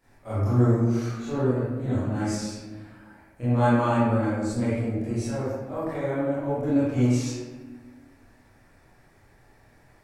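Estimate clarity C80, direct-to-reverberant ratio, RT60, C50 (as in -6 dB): 0.0 dB, -13.0 dB, 1.3 s, -4.0 dB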